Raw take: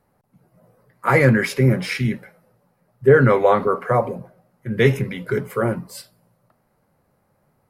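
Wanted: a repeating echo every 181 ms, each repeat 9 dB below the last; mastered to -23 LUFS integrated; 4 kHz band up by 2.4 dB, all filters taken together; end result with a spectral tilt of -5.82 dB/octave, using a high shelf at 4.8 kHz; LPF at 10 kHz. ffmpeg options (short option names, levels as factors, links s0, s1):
-af "lowpass=10000,equalizer=f=4000:t=o:g=7,highshelf=f=4800:g=-7.5,aecho=1:1:181|362|543|724:0.355|0.124|0.0435|0.0152,volume=0.596"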